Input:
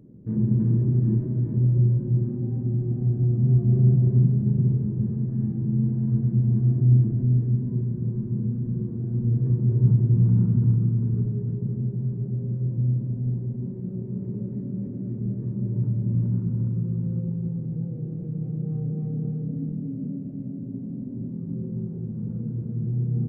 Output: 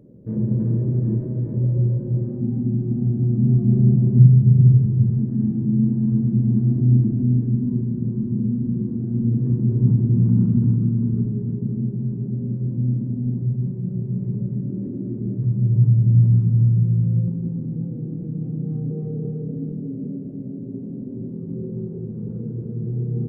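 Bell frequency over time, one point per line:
bell +10.5 dB 0.69 oct
540 Hz
from 2.41 s 230 Hz
from 4.19 s 120 Hz
from 5.19 s 250 Hz
from 13.42 s 140 Hz
from 14.7 s 310 Hz
from 15.38 s 120 Hz
from 17.28 s 260 Hz
from 18.91 s 420 Hz

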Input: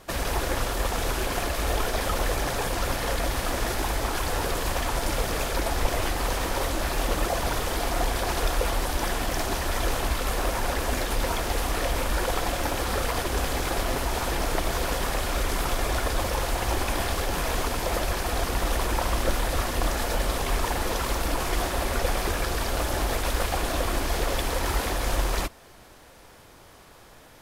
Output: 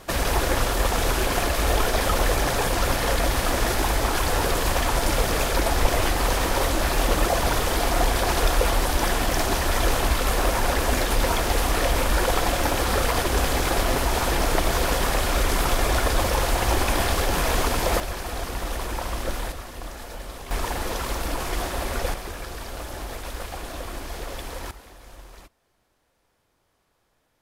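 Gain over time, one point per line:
+4.5 dB
from 18 s -3.5 dB
from 19.52 s -10.5 dB
from 20.51 s -1 dB
from 22.14 s -7.5 dB
from 24.71 s -19.5 dB

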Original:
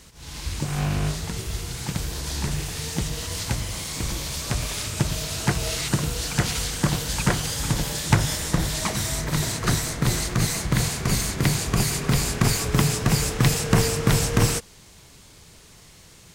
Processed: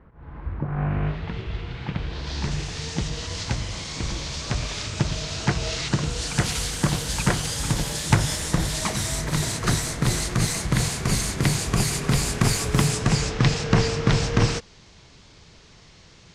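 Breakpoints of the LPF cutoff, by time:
LPF 24 dB/oct
0.67 s 1500 Hz
1.31 s 3200 Hz
1.99 s 3200 Hz
2.54 s 6500 Hz
5.98 s 6500 Hz
6.49 s 12000 Hz
12.84 s 12000 Hz
13.34 s 5900 Hz

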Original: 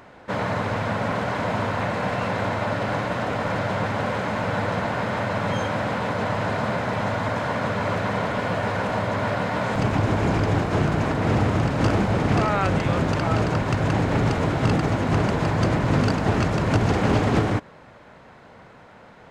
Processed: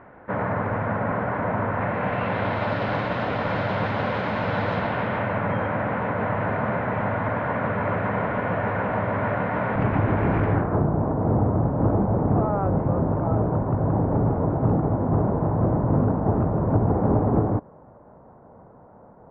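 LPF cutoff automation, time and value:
LPF 24 dB/oct
1.69 s 1900 Hz
2.68 s 4200 Hz
4.72 s 4200 Hz
5.48 s 2200 Hz
10.47 s 2200 Hz
10.87 s 1000 Hz

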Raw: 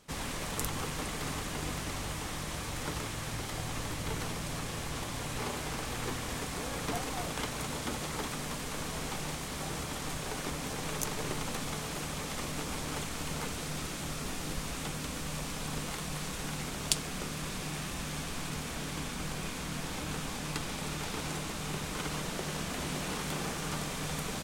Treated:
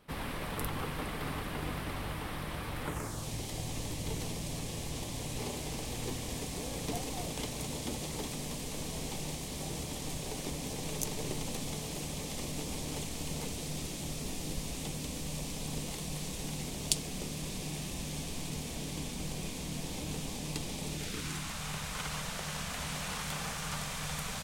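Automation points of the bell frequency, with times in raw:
bell -15 dB 0.93 oct
2.83 s 6700 Hz
3.31 s 1400 Hz
20.92 s 1400 Hz
21.58 s 330 Hz

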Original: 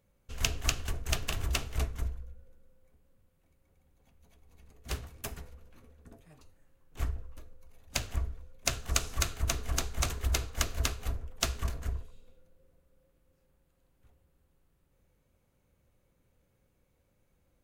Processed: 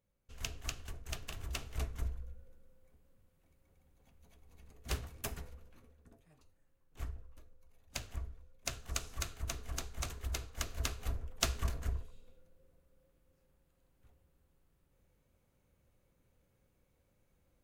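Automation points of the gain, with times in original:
1.38 s -11 dB
2.28 s -1 dB
5.53 s -1 dB
6.15 s -9 dB
10.55 s -9 dB
11.23 s -2 dB

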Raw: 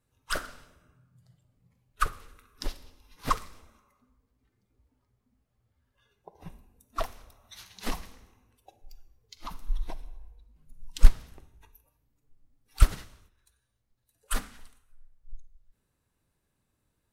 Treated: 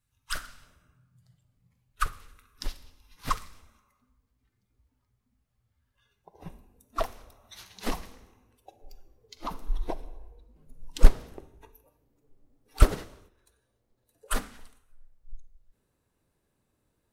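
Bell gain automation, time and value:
bell 440 Hz 2 oct
-14.5 dB
from 0.62 s -6.5 dB
from 6.34 s +5 dB
from 8.8 s +14 dB
from 14.34 s +5.5 dB

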